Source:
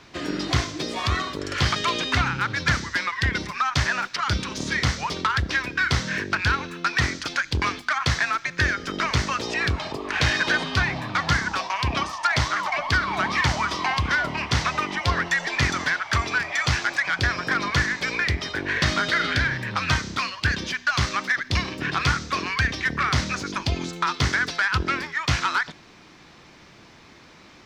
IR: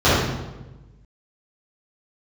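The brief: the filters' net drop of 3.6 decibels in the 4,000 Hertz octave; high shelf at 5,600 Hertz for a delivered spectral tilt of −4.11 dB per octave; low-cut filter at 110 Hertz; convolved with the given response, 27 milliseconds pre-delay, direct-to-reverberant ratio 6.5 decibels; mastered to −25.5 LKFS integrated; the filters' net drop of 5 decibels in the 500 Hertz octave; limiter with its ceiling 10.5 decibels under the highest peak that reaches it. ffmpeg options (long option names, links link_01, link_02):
-filter_complex "[0:a]highpass=110,equalizer=frequency=500:width_type=o:gain=-7,equalizer=frequency=4000:width_type=o:gain=-7,highshelf=frequency=5600:gain=6,alimiter=limit=-20dB:level=0:latency=1,asplit=2[link_01][link_02];[1:a]atrim=start_sample=2205,adelay=27[link_03];[link_02][link_03]afir=irnorm=-1:irlink=0,volume=-32dB[link_04];[link_01][link_04]amix=inputs=2:normalize=0,volume=2.5dB"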